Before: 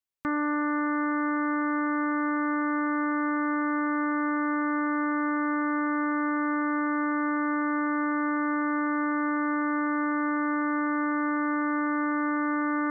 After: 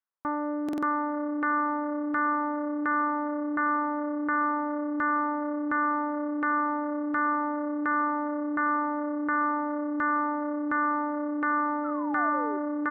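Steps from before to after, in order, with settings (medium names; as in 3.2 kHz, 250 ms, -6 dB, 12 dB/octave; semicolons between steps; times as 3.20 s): bass shelf 400 Hz -8 dB; LFO low-pass saw down 1.4 Hz 400–1600 Hz; painted sound fall, 11.84–12.58 s, 370–1400 Hz -37 dBFS; frequency-shifting echo 408 ms, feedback 32%, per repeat -32 Hz, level -24 dB; buffer glitch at 0.64 s, samples 2048, times 3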